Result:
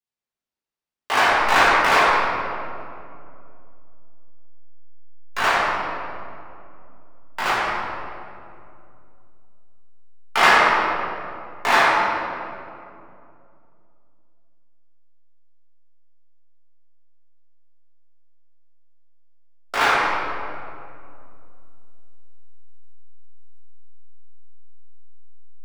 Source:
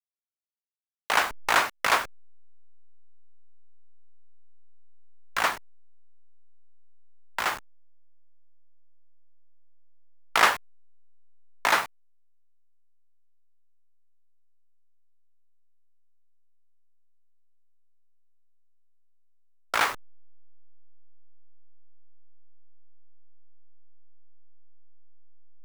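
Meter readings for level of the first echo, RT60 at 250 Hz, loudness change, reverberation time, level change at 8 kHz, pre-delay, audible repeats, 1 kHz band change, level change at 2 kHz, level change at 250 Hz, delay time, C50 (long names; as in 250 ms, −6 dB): no echo audible, 3.3 s, +6.0 dB, 2.5 s, +1.0 dB, 3 ms, no echo audible, +9.5 dB, +8.5 dB, +12.0 dB, no echo audible, −3.5 dB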